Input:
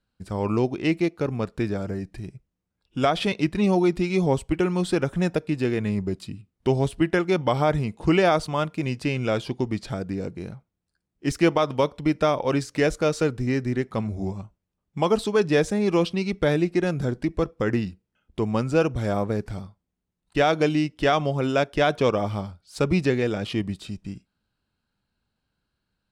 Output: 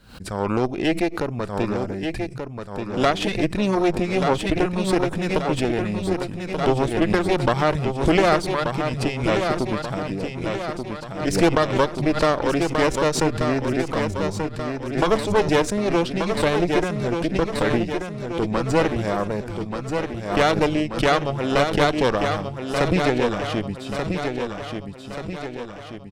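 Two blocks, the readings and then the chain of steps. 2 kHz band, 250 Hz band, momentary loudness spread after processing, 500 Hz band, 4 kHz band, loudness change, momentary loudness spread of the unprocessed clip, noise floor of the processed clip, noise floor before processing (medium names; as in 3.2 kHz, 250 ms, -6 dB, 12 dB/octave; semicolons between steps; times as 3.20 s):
+4.0 dB, +1.5 dB, 10 LU, +2.5 dB, +4.5 dB, +1.5 dB, 12 LU, -35 dBFS, -81 dBFS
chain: Chebyshev shaper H 4 -10 dB, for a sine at -8 dBFS; feedback delay 1183 ms, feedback 51%, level -6 dB; swell ahead of each attack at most 100 dB/s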